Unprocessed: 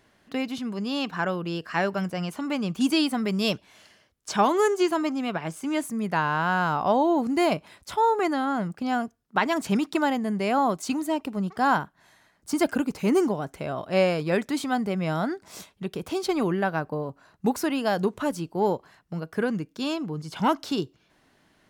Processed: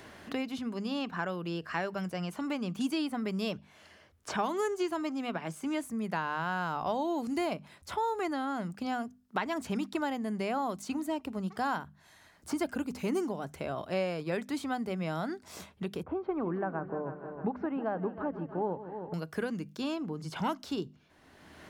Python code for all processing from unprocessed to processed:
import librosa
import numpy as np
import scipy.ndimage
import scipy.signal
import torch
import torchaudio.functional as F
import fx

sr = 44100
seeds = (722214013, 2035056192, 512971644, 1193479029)

y = fx.chain(x, sr, fx.lowpass(hz=1400.0, slope=24),
    fx.echo_heads(ms=157, heads='first and second', feedback_pct=43, wet_db=-15.5), at=(16.03, 19.14))
y = fx.peak_eq(y, sr, hz=80.0, db=13.0, octaves=0.29)
y = fx.hum_notches(y, sr, base_hz=50, count=5)
y = fx.band_squash(y, sr, depth_pct=70)
y = y * librosa.db_to_amplitude(-8.5)